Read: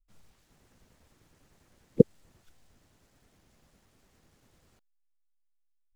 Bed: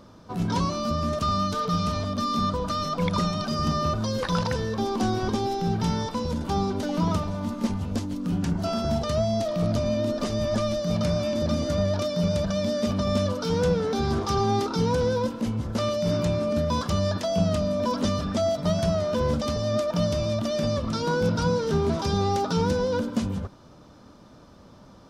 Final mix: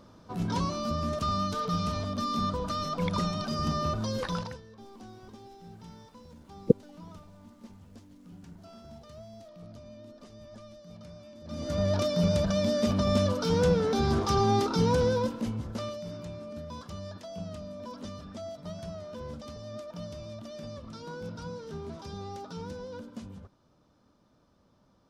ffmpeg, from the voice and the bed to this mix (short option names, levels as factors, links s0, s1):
-filter_complex "[0:a]adelay=4700,volume=0.75[s0];[1:a]volume=7.5,afade=t=out:st=4.21:d=0.4:silence=0.11885,afade=t=in:st=11.44:d=0.52:silence=0.0794328,afade=t=out:st=14.98:d=1.12:silence=0.177828[s1];[s0][s1]amix=inputs=2:normalize=0"